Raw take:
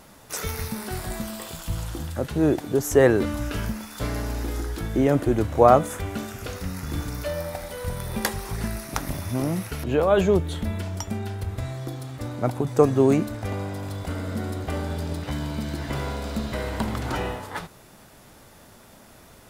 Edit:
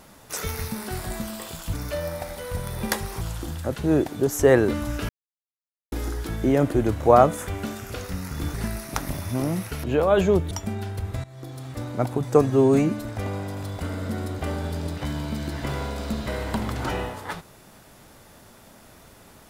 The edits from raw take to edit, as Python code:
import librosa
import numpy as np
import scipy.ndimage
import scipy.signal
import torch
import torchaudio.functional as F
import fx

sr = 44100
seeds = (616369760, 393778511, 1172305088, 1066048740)

y = fx.edit(x, sr, fx.silence(start_s=3.61, length_s=0.83),
    fx.move(start_s=7.06, length_s=1.48, to_s=1.73),
    fx.cut(start_s=10.51, length_s=0.44),
    fx.fade_in_from(start_s=11.68, length_s=0.45, floor_db=-17.5),
    fx.stretch_span(start_s=12.95, length_s=0.36, factor=1.5), tone=tone)